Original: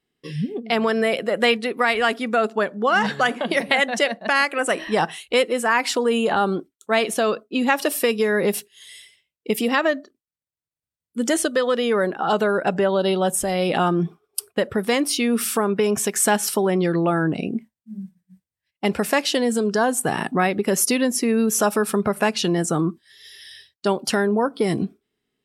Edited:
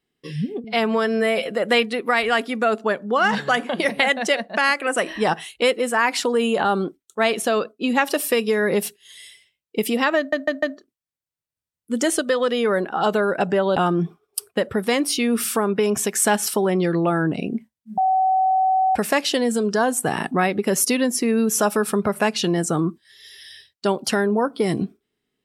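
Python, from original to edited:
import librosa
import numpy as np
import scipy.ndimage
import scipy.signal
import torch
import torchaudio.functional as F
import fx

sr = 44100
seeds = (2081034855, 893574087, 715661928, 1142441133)

y = fx.edit(x, sr, fx.stretch_span(start_s=0.64, length_s=0.57, factor=1.5),
    fx.stutter(start_s=9.89, slice_s=0.15, count=4),
    fx.cut(start_s=13.03, length_s=0.74),
    fx.bleep(start_s=17.98, length_s=0.98, hz=757.0, db=-15.0), tone=tone)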